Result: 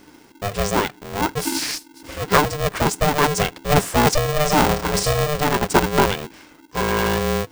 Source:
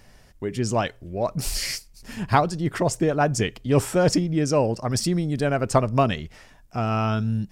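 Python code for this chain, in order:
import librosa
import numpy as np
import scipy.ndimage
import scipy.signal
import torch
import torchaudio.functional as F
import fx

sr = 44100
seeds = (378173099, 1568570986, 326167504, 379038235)

y = fx.room_flutter(x, sr, wall_m=6.1, rt60_s=0.34, at=(4.27, 5.29), fade=0.02)
y = y * np.sign(np.sin(2.0 * np.pi * 300.0 * np.arange(len(y)) / sr))
y = y * librosa.db_to_amplitude(3.0)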